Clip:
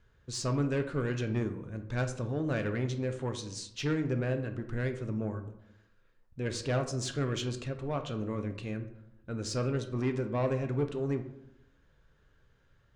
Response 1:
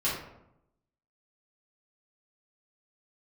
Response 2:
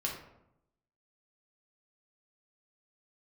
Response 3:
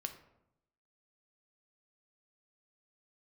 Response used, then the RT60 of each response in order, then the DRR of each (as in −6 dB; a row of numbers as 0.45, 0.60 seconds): 3; 0.80, 0.80, 0.85 seconds; −10.5, −2.5, 6.0 decibels